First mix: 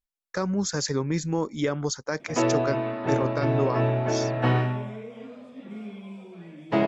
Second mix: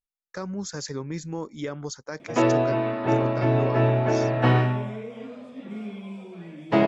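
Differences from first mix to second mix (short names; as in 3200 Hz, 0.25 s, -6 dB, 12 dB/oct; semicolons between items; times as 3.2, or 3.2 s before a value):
speech -6.0 dB; background +3.0 dB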